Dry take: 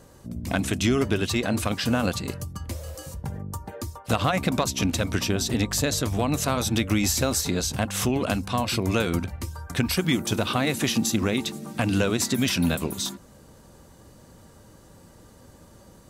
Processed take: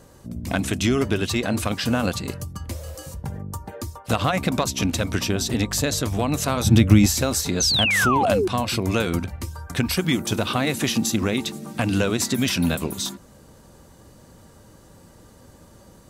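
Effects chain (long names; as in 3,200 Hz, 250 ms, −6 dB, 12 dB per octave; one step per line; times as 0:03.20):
0:06.64–0:07.06: parametric band 120 Hz +11.5 dB 2.5 octaves
0:07.60–0:08.48: sound drawn into the spectrogram fall 340–6,500 Hz −22 dBFS
level +1.5 dB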